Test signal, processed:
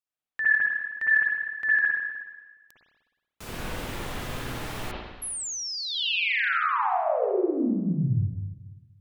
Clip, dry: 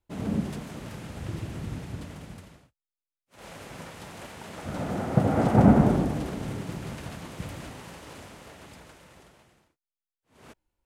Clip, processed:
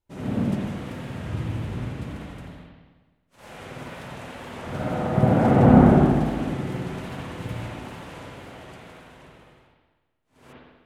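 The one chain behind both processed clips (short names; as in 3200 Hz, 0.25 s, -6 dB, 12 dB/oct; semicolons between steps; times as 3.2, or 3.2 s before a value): wow and flutter 74 cents; spring tank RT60 1.3 s, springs 52/60 ms, chirp 40 ms, DRR -7 dB; gain -3 dB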